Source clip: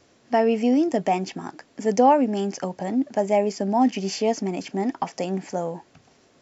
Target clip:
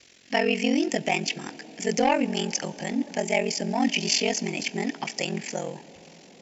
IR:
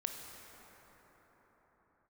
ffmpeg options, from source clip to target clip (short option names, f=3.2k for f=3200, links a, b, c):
-filter_complex "[0:a]aeval=exprs='val(0)*sin(2*PI*22*n/s)':c=same,acontrast=51,highshelf=f=1.6k:t=q:w=1.5:g=11.5,asplit=2[a][b];[1:a]atrim=start_sample=2205,asetrate=30870,aresample=44100[c];[b][c]afir=irnorm=-1:irlink=0,volume=-16dB[d];[a][d]amix=inputs=2:normalize=0,volume=-8dB"